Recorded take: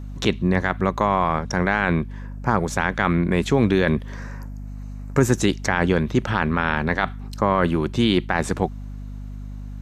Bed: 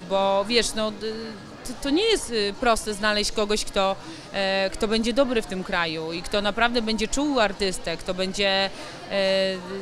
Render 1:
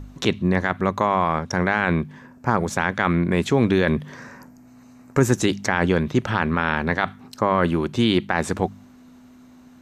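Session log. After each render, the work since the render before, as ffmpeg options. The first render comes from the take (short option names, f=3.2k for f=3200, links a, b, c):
-af "bandreject=f=50:t=h:w=4,bandreject=f=100:t=h:w=4,bandreject=f=150:t=h:w=4,bandreject=f=200:t=h:w=4"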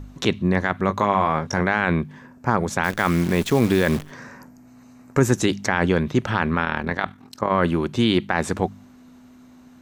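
-filter_complex "[0:a]asettb=1/sr,asplit=3[a][b][c];[a]atrim=end=0.874[d];[b]atrim=start=0.87:end=1.61,asetpts=PTS-STARTPTS,afade=t=in:d=0.004:c=qsin,afade=t=out:st=0.736:d=0.004:c=qsin,asplit=2[e][f];[f]adelay=20,volume=-8dB[g];[e][g]amix=inputs=2:normalize=0,atrim=end_sample=32634[h];[c]atrim=start=1.606[i];[d][h]acrossfade=d=0.004:c1=hsin:c2=qsin[j];[j][i]acrossfade=d=0.004:c1=qsin:c2=hsin,asplit=3[k][l][m];[k]afade=t=out:st=2.83:d=0.02[n];[l]acrusher=bits=6:dc=4:mix=0:aa=0.000001,afade=t=in:st=2.83:d=0.02,afade=t=out:st=4.1:d=0.02[o];[m]afade=t=in:st=4.1:d=0.02[p];[n][o][p]amix=inputs=3:normalize=0,asettb=1/sr,asplit=3[q][r][s];[q]atrim=end=6.654[t];[r]atrim=start=6.65:end=7.51,asetpts=PTS-STARTPTS,afade=t=in:d=0.004:c=qsin,afade=t=out:st=0.856:d=0.004:c=qsin,tremolo=f=41:d=0.667[u];[s]atrim=start=7.506[v];[t][u]acrossfade=d=0.004:c1=hsin:c2=qsin[w];[w][v]acrossfade=d=0.004:c1=qsin:c2=hsin"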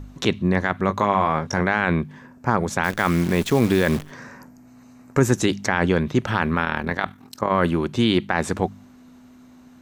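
-filter_complex "[0:a]asettb=1/sr,asplit=3[a][b][c];[a]atrim=end=6.274[d];[b]atrim=start=6.27:end=7.7,asetpts=PTS-STARTPTS,afade=t=in:d=0.004:c=qsin,afade=t=out:st=1.426:d=0.004:c=qsin,highshelf=f=11k:g=11[e];[c]atrim=start=7.696[f];[d][e]acrossfade=d=0.004:c1=hsin:c2=qsin[g];[g][f]acrossfade=d=0.004:c1=qsin:c2=hsin"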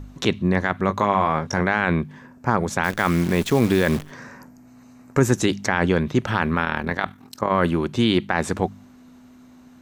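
-af anull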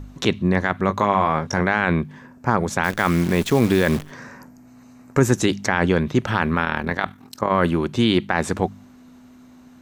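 -af "volume=1dB"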